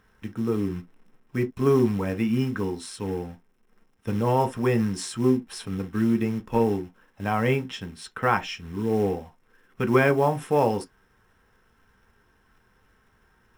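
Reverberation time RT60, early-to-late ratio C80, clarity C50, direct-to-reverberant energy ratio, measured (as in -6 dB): no single decay rate, 54.5 dB, 23.0 dB, 6.0 dB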